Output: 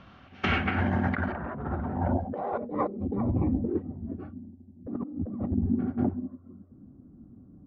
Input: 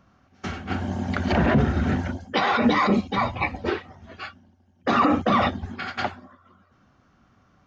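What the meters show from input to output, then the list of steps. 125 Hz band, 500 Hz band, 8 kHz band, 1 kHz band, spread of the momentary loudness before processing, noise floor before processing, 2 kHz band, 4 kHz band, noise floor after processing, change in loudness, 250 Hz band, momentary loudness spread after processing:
-3.0 dB, -7.0 dB, n/a, -10.5 dB, 15 LU, -61 dBFS, -7.5 dB, under -10 dB, -54 dBFS, -6.5 dB, -4.5 dB, 13 LU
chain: low-pass sweep 3300 Hz -> 280 Hz, 0.19–3.48; negative-ratio compressor -30 dBFS, ratio -1

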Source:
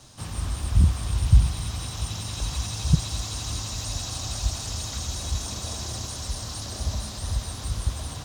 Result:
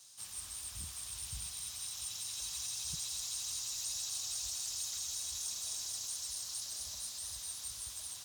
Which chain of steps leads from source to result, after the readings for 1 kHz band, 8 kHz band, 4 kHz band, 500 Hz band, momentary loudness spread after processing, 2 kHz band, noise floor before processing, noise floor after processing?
-19.5 dB, -3.0 dB, -7.0 dB, under -20 dB, 5 LU, -13.0 dB, -36 dBFS, -48 dBFS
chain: pre-emphasis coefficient 0.97; gain -2.5 dB

